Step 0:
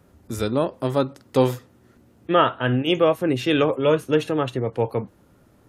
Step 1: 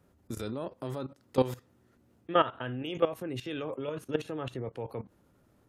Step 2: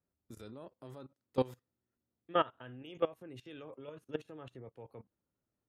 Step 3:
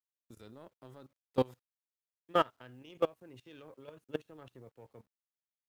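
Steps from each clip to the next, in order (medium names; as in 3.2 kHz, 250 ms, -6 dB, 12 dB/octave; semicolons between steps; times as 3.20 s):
level held to a coarse grid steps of 15 dB; trim -5.5 dB
upward expansion 1.5:1, over -57 dBFS; trim -5 dB
companding laws mixed up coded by A; trim +2.5 dB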